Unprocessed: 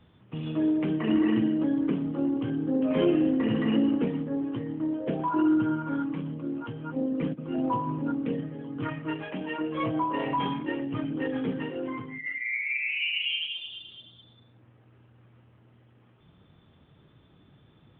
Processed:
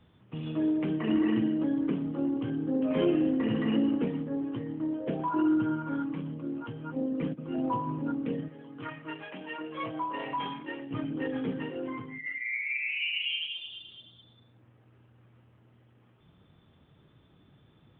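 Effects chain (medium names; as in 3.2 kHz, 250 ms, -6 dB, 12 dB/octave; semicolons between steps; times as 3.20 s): 8.48–10.91 s: bass shelf 480 Hz -9.5 dB; trim -2.5 dB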